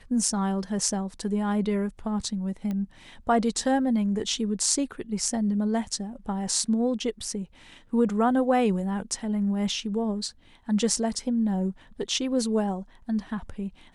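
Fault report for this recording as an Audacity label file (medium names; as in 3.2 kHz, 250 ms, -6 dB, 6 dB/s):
2.710000	2.710000	pop -21 dBFS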